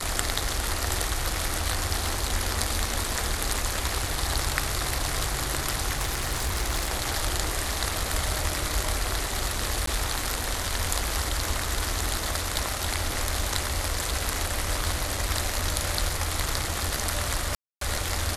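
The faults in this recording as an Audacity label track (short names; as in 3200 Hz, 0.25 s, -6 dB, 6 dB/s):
5.910000	6.900000	clipped -21.5 dBFS
9.860000	9.870000	gap 13 ms
17.550000	17.810000	gap 0.263 s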